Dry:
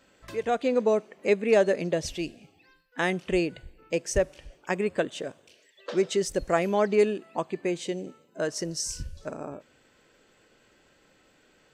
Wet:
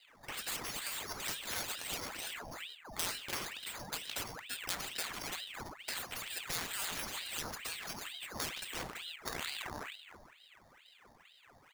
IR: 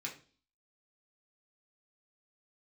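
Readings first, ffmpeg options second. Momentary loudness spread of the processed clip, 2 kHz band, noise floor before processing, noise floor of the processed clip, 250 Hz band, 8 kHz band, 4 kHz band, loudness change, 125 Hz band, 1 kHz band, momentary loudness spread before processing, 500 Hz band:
7 LU, -6.5 dB, -63 dBFS, -63 dBFS, -21.0 dB, -3.0 dB, +0.5 dB, -11.5 dB, -15.0 dB, -10.5 dB, 15 LU, -25.5 dB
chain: -filter_complex "[0:a]highpass=f=190:w=0.5412,highpass=f=190:w=1.3066,equalizer=f=400:t=q:w=4:g=7,equalizer=f=1400:t=q:w=4:g=9,equalizer=f=2300:t=q:w=4:g=-7,lowpass=f=7200:w=0.5412,lowpass=f=7200:w=1.3066,bandreject=f=430:w=12,asplit=2[s0][s1];[s1]adelay=333,lowpass=f=1400:p=1,volume=0.398,asplit=2[s2][s3];[s3]adelay=333,lowpass=f=1400:p=1,volume=0.24,asplit=2[s4][s5];[s5]adelay=333,lowpass=f=1400:p=1,volume=0.24[s6];[s0][s2][s4][s6]amix=inputs=4:normalize=0,adynamicsmooth=sensitivity=7:basefreq=780,asplit=2[s7][s8];[1:a]atrim=start_sample=2205,adelay=19[s9];[s8][s9]afir=irnorm=-1:irlink=0,volume=0.398[s10];[s7][s10]amix=inputs=2:normalize=0,acompressor=threshold=0.0447:ratio=3,highshelf=f=5300:g=-7.5,acrusher=samples=8:mix=1:aa=0.000001,afftfilt=real='re*lt(hypot(re,im),0.0501)':imag='im*lt(hypot(re,im),0.0501)':win_size=1024:overlap=0.75,aeval=exprs='val(0)*sin(2*PI*1900*n/s+1900*0.85/2.2*sin(2*PI*2.2*n/s))':c=same,volume=1.78"

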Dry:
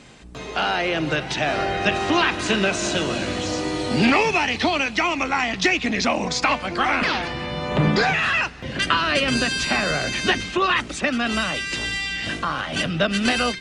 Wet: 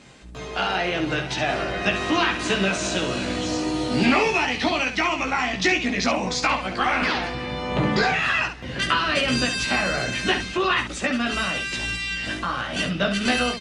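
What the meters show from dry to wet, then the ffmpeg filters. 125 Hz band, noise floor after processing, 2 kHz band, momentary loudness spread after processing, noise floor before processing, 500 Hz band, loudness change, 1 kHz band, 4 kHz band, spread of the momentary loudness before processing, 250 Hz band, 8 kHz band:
-2.0 dB, -34 dBFS, -1.5 dB, 6 LU, -34 dBFS, -1.5 dB, -1.5 dB, -1.5 dB, -1.5 dB, 6 LU, -1.0 dB, -1.5 dB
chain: -af "aecho=1:1:16|68:0.668|0.422,volume=0.668"

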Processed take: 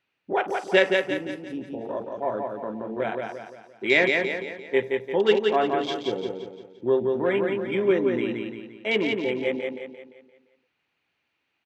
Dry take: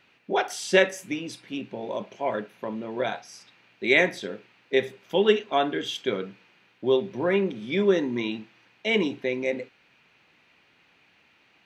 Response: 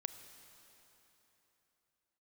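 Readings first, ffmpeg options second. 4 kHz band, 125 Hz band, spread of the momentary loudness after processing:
-1.0 dB, -1.0 dB, 14 LU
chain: -af "afwtdn=0.0224,equalizer=f=200:w=7:g=-7.5,aecho=1:1:173|346|519|692|865|1038:0.631|0.278|0.122|0.0537|0.0236|0.0104"

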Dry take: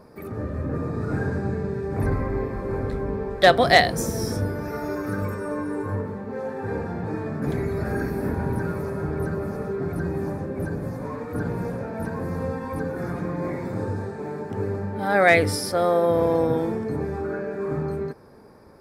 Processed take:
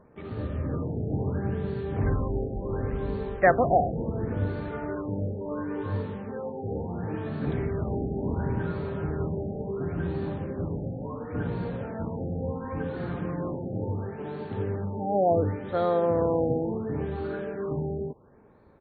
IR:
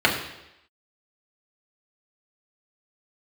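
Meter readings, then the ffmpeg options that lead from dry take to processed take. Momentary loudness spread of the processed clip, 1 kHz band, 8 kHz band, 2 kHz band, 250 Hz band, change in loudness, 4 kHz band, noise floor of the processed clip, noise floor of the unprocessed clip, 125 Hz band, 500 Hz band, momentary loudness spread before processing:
10 LU, -4.5 dB, under -40 dB, -11.0 dB, -3.5 dB, -4.5 dB, under -20 dB, -40 dBFS, -36 dBFS, -2.0 dB, -4.0 dB, 12 LU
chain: -filter_complex "[0:a]lowshelf=f=140:g=4.5,asplit=2[s0][s1];[s1]acrusher=bits=5:mix=0:aa=0.000001,volume=0.501[s2];[s0][s2]amix=inputs=2:normalize=0,aresample=22050,aresample=44100,afftfilt=real='re*lt(b*sr/1024,820*pow(4600/820,0.5+0.5*sin(2*PI*0.71*pts/sr)))':imag='im*lt(b*sr/1024,820*pow(4600/820,0.5+0.5*sin(2*PI*0.71*pts/sr)))':win_size=1024:overlap=0.75,volume=0.398"

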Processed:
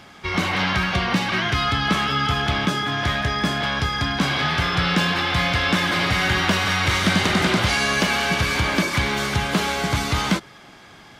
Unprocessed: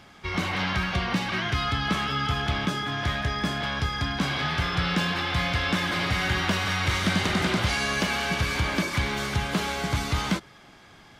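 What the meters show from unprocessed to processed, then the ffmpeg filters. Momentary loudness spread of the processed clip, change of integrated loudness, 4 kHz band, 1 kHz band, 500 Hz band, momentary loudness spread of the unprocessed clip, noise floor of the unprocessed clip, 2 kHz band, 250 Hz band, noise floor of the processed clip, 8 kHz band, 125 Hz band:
4 LU, +5.5 dB, +6.0 dB, +6.0 dB, +6.0 dB, 4 LU, -51 dBFS, +6.0 dB, +5.0 dB, -46 dBFS, +6.0 dB, +4.0 dB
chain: -af "lowshelf=f=78:g=-7,volume=2"

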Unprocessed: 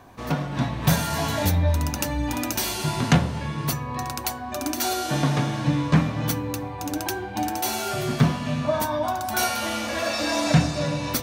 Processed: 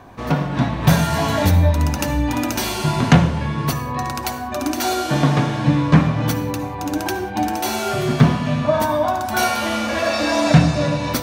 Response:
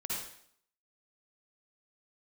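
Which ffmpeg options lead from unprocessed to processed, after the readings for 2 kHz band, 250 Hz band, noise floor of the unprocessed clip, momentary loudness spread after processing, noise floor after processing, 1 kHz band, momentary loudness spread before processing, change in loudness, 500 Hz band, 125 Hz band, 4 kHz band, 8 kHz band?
+5.5 dB, +6.5 dB, -34 dBFS, 9 LU, -28 dBFS, +6.0 dB, 8 LU, +5.5 dB, +6.5 dB, +6.5 dB, +3.0 dB, +1.0 dB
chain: -filter_complex "[0:a]highshelf=f=4600:g=-8,asplit=2[s0][s1];[1:a]atrim=start_sample=2205,afade=t=out:st=0.25:d=0.01,atrim=end_sample=11466[s2];[s1][s2]afir=irnorm=-1:irlink=0,volume=0.251[s3];[s0][s3]amix=inputs=2:normalize=0,volume=1.78"

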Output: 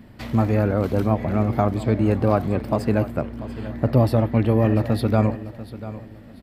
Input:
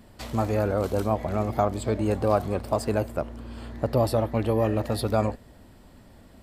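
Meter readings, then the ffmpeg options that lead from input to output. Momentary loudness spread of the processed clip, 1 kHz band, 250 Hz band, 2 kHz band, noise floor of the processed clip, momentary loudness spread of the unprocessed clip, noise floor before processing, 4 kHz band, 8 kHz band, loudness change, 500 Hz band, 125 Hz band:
15 LU, +1.5 dB, +7.5 dB, +4.5 dB, -43 dBFS, 8 LU, -52 dBFS, -0.5 dB, no reading, +5.0 dB, +2.0 dB, +8.0 dB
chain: -filter_complex "[0:a]equalizer=f=125:t=o:w=1:g=8,equalizer=f=250:t=o:w=1:g=7,equalizer=f=2000:t=o:w=1:g=6,equalizer=f=8000:t=o:w=1:g=-8,asplit=2[s0][s1];[s1]aecho=0:1:691|1382|2073:0.178|0.0516|0.015[s2];[s0][s2]amix=inputs=2:normalize=0"

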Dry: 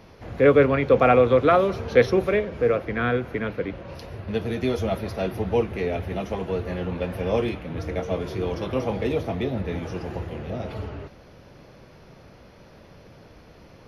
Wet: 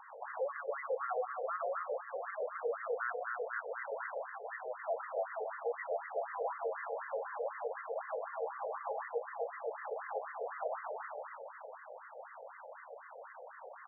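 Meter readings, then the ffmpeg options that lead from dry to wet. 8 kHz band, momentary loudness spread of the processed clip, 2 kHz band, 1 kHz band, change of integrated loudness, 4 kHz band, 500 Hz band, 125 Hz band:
no reading, 13 LU, -11.5 dB, -10.0 dB, -16.0 dB, under -40 dB, -16.0 dB, under -40 dB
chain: -filter_complex "[0:a]highpass=55,equalizer=f=180:w=0.37:g=-8,bandreject=f=60:t=h:w=6,bandreject=f=120:t=h:w=6,bandreject=f=180:t=h:w=6,bandreject=f=240:t=h:w=6,bandreject=f=300:t=h:w=6,bandreject=f=360:t=h:w=6,bandreject=f=420:t=h:w=6,asplit=2[s0][s1];[s1]aecho=0:1:120|270|457.5|691.9|984.8:0.631|0.398|0.251|0.158|0.1[s2];[s0][s2]amix=inputs=2:normalize=0,acompressor=threshold=0.02:ratio=20,volume=63.1,asoftclip=hard,volume=0.0158,afftfilt=real='re*between(b*sr/1024,580*pow(1500/580,0.5+0.5*sin(2*PI*4*pts/sr))/1.41,580*pow(1500/580,0.5+0.5*sin(2*PI*4*pts/sr))*1.41)':imag='im*between(b*sr/1024,580*pow(1500/580,0.5+0.5*sin(2*PI*4*pts/sr))/1.41,580*pow(1500/580,0.5+0.5*sin(2*PI*4*pts/sr))*1.41)':win_size=1024:overlap=0.75,volume=2.37"

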